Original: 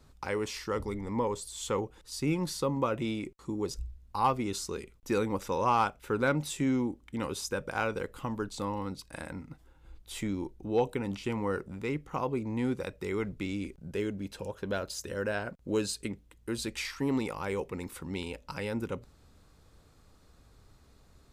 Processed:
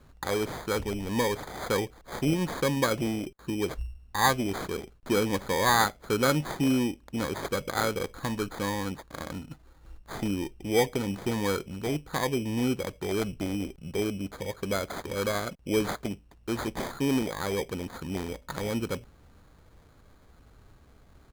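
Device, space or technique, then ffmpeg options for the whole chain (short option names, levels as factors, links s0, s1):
crushed at another speed: -af "asetrate=35280,aresample=44100,acrusher=samples=20:mix=1:aa=0.000001,asetrate=55125,aresample=44100,volume=1.5"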